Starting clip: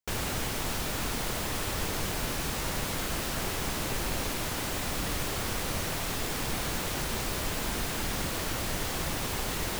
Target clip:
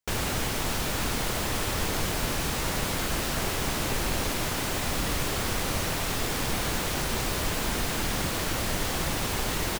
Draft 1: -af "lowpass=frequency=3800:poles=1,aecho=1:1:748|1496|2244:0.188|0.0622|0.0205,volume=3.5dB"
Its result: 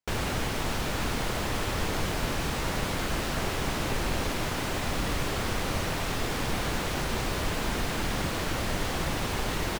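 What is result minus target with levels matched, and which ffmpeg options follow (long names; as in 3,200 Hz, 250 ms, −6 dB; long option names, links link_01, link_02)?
8,000 Hz band −4.0 dB
-af "lowpass=frequency=15000:poles=1,aecho=1:1:748|1496|2244:0.188|0.0622|0.0205,volume=3.5dB"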